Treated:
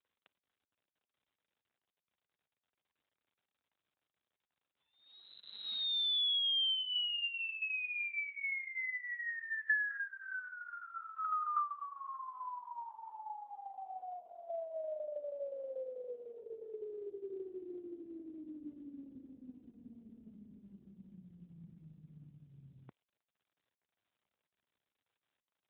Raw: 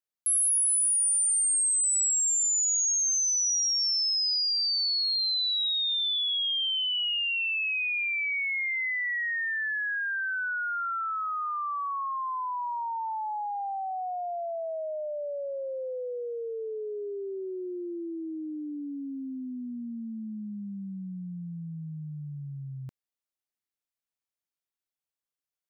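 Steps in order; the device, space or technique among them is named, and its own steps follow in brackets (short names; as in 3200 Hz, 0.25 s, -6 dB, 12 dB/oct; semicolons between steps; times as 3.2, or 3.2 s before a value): 7.77–9.45 HPF 68 Hz -> 150 Hz 12 dB/oct; telephone (BPF 290–3300 Hz; AMR-NB 12.2 kbps 8000 Hz)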